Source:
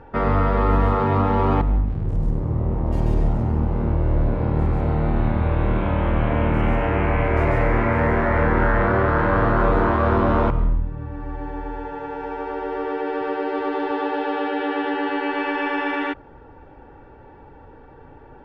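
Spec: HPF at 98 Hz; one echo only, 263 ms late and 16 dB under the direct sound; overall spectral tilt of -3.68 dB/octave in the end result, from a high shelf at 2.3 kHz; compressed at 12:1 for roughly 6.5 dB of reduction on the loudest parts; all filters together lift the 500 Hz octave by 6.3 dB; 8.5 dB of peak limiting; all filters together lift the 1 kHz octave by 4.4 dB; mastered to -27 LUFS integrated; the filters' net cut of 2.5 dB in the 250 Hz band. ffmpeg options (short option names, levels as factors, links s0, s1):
-af "highpass=98,equalizer=f=250:t=o:g=-6.5,equalizer=f=500:t=o:g=8.5,equalizer=f=1000:t=o:g=4,highshelf=f=2300:g=-5,acompressor=threshold=0.126:ratio=12,alimiter=limit=0.133:level=0:latency=1,aecho=1:1:263:0.158,volume=0.944"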